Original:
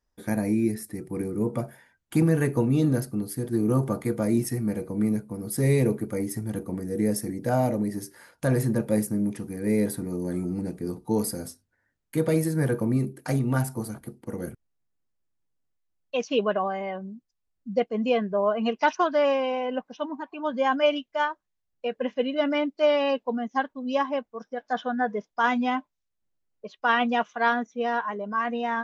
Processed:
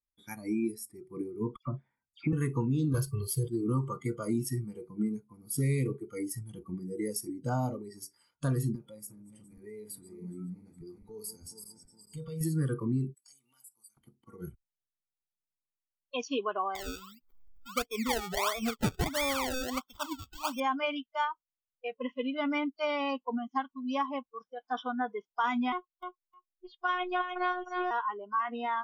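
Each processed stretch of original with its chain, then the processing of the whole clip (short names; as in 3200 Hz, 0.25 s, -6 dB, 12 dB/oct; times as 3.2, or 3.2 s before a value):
1.56–2.33 air absorption 210 m + dispersion lows, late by 0.112 s, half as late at 2800 Hz
2.94–3.48 comb 1.9 ms, depth 93% + sample leveller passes 1
8.75–12.41 regenerating reverse delay 0.207 s, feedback 65%, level -10 dB + compressor 2.5:1, threshold -33 dBFS
13.14–13.97 differentiator + compressor 2:1, threshold -49 dBFS
16.75–20.6 upward compressor, threshold -30 dBFS + decimation with a swept rate 29× 1.5 Hz
25.72–27.91 robotiser 362 Hz + feedback echo 0.307 s, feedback 16%, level -7 dB
whole clip: spectral noise reduction 19 dB; comb 0.9 ms, depth 56%; compressor 2.5:1, threshold -24 dBFS; gain -3.5 dB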